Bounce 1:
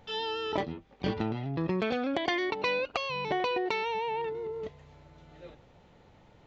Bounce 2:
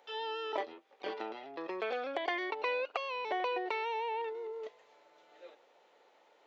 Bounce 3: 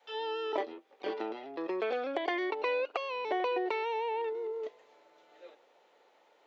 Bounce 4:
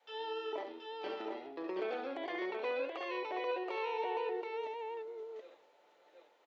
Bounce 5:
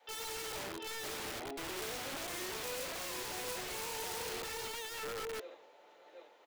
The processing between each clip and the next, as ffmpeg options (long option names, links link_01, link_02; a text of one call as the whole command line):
ffmpeg -i in.wav -filter_complex "[0:a]highpass=frequency=410:width=0.5412,highpass=frequency=410:width=1.3066,acrossover=split=2900[link_01][link_02];[link_02]acompressor=threshold=-49dB:ratio=4:attack=1:release=60[link_03];[link_01][link_03]amix=inputs=2:normalize=0,volume=-3dB" out.wav
ffmpeg -i in.wav -af "adynamicequalizer=threshold=0.00251:dfrequency=320:dqfactor=1:tfrequency=320:tqfactor=1:attack=5:release=100:ratio=0.375:range=3.5:mode=boostabove:tftype=bell" out.wav
ffmpeg -i in.wav -filter_complex "[0:a]alimiter=level_in=1.5dB:limit=-24dB:level=0:latency=1:release=73,volume=-1.5dB,asplit=2[link_01][link_02];[link_02]aecho=0:1:70|561|727:0.473|0.133|0.668[link_03];[link_01][link_03]amix=inputs=2:normalize=0,volume=-5.5dB" out.wav
ffmpeg -i in.wav -filter_complex "[0:a]asplit=2[link_01][link_02];[link_02]acrusher=bits=6:mix=0:aa=0.000001,volume=-3dB[link_03];[link_01][link_03]amix=inputs=2:normalize=0,aeval=exprs='(mod(84.1*val(0)+1,2)-1)/84.1':channel_layout=same,volume=6dB" out.wav